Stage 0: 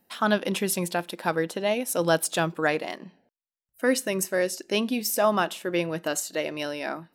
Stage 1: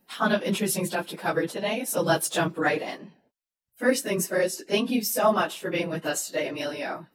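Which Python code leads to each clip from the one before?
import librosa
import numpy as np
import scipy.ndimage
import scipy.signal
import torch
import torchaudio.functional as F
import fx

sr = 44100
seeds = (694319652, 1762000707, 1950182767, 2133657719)

y = fx.phase_scramble(x, sr, seeds[0], window_ms=50)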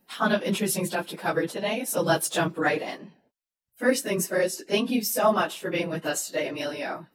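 y = x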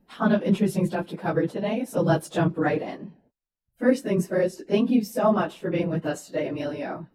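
y = fx.tilt_eq(x, sr, slope=-3.5)
y = F.gain(torch.from_numpy(y), -2.0).numpy()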